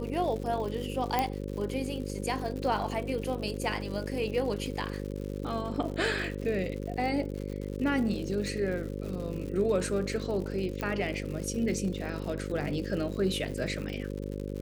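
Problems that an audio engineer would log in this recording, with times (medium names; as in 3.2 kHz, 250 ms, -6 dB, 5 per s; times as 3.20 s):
buzz 50 Hz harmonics 11 -36 dBFS
crackle 140 per s -37 dBFS
1.19 s: pop -13 dBFS
10.81 s: pop -19 dBFS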